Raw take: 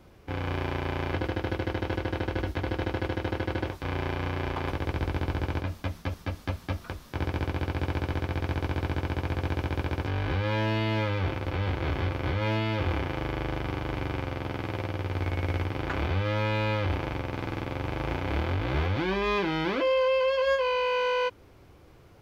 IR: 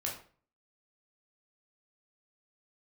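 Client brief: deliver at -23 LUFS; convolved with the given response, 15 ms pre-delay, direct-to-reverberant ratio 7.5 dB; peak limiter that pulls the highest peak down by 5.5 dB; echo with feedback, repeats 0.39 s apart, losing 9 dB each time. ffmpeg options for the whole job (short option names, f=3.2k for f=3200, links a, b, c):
-filter_complex "[0:a]alimiter=limit=-22.5dB:level=0:latency=1,aecho=1:1:390|780|1170|1560:0.355|0.124|0.0435|0.0152,asplit=2[a][b];[1:a]atrim=start_sample=2205,adelay=15[c];[b][c]afir=irnorm=-1:irlink=0,volume=-9.5dB[d];[a][d]amix=inputs=2:normalize=0,volume=9.5dB"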